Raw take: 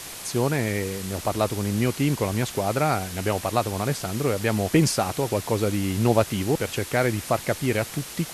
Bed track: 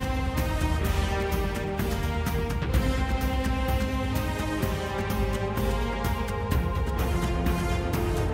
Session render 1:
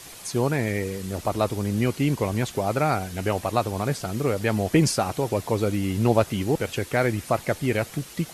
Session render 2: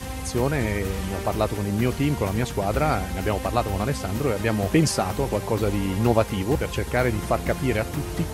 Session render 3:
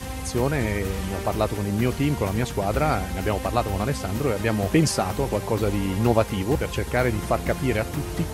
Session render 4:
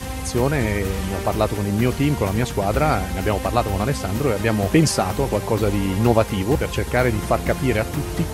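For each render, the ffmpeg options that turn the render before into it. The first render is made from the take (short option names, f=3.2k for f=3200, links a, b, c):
-af "afftdn=nr=7:nf=-38"
-filter_complex "[1:a]volume=-5dB[a];[0:a][a]amix=inputs=2:normalize=0"
-af anull
-af "volume=3.5dB,alimiter=limit=-2dB:level=0:latency=1"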